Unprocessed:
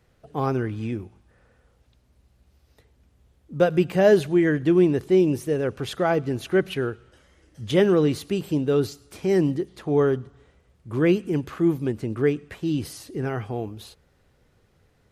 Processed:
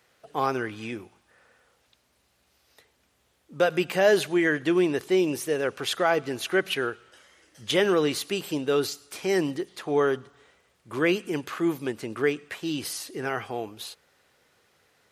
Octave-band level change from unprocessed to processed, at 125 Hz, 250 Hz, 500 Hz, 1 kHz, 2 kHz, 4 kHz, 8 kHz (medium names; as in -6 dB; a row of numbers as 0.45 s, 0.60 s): -11.0 dB, -5.5 dB, -3.0 dB, +1.5 dB, +4.0 dB, +5.5 dB, +6.5 dB